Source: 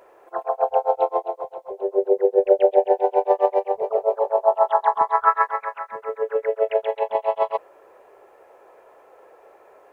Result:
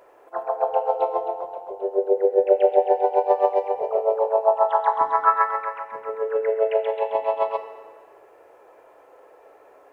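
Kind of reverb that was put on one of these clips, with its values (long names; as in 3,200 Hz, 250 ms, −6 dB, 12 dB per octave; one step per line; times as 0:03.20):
feedback delay network reverb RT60 1.6 s, low-frequency decay 1.5×, high-frequency decay 0.85×, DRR 6.5 dB
level −1.5 dB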